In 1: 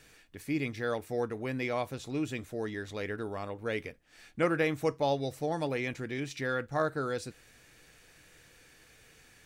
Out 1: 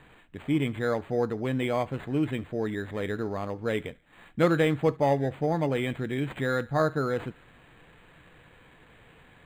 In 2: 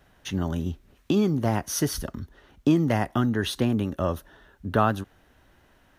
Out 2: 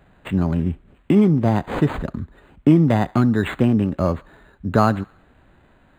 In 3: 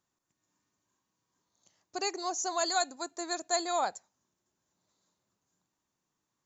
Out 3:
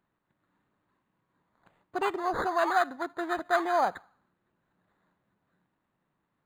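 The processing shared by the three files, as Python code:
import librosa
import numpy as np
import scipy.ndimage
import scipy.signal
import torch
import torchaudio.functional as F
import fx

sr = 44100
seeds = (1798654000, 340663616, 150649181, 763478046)

p1 = fx.peak_eq(x, sr, hz=170.0, db=4.5, octaves=0.93)
p2 = p1 + fx.echo_banded(p1, sr, ms=71, feedback_pct=53, hz=1500.0, wet_db=-22.0, dry=0)
p3 = np.interp(np.arange(len(p2)), np.arange(len(p2))[::8], p2[::8])
y = p3 * 10.0 ** (5.0 / 20.0)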